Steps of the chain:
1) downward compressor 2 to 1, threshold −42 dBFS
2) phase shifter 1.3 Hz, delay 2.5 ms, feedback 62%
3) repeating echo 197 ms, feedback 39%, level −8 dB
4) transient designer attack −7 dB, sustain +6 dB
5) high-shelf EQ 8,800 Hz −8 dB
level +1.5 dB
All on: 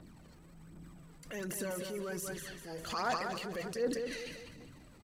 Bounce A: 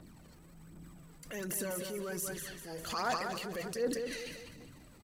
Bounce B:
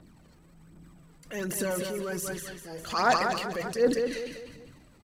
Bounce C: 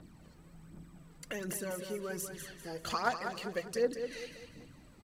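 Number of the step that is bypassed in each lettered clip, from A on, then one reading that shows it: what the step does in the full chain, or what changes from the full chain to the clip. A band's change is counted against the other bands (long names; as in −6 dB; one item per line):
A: 5, 8 kHz band +3.5 dB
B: 1, average gain reduction 3.5 dB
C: 4, change in crest factor +4.0 dB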